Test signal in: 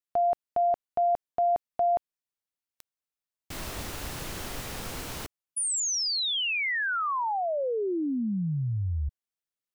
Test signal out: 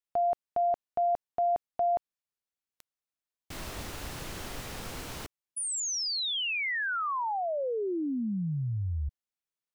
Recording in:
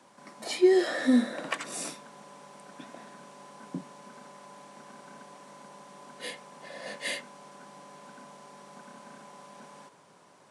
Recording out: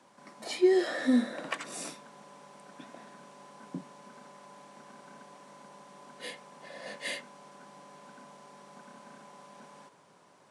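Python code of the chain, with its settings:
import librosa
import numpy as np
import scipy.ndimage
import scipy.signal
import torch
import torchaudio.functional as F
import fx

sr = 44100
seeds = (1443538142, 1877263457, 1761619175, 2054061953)

y = fx.high_shelf(x, sr, hz=9000.0, db=-4.0)
y = F.gain(torch.from_numpy(y), -2.5).numpy()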